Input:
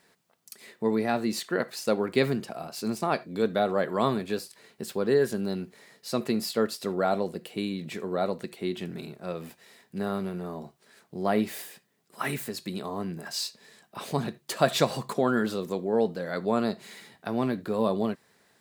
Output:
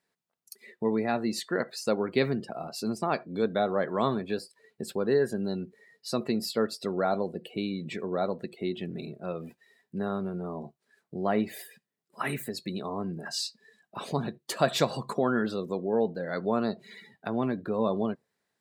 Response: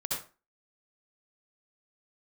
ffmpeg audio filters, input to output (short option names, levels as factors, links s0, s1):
-filter_complex "[0:a]asplit=2[s0][s1];[s1]acompressor=threshold=0.0158:ratio=20,volume=0.708[s2];[s0][s2]amix=inputs=2:normalize=0,afftdn=nr=19:nf=-42,volume=0.75"